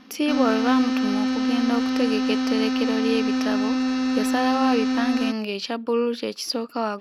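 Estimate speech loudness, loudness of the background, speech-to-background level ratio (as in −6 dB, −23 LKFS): −26.5 LKFS, −23.5 LKFS, −3.0 dB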